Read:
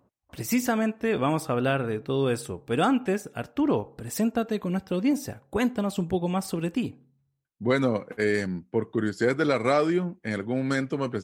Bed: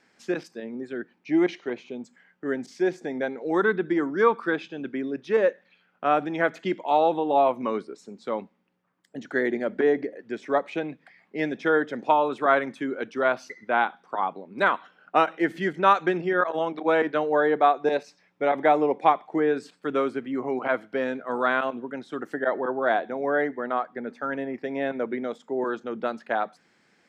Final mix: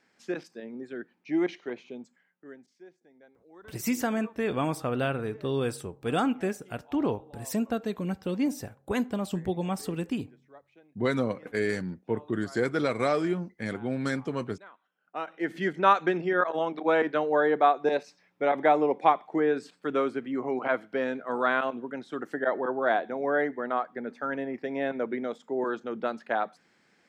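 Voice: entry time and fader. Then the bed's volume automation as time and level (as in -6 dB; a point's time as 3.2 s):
3.35 s, -3.5 dB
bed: 1.96 s -5 dB
2.93 s -29 dB
14.77 s -29 dB
15.57 s -2 dB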